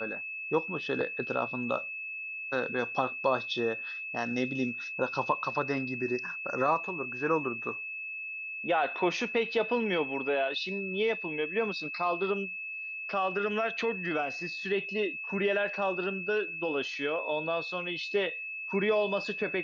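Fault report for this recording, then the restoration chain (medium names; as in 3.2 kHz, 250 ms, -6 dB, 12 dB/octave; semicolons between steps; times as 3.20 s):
whine 2.6 kHz -36 dBFS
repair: band-stop 2.6 kHz, Q 30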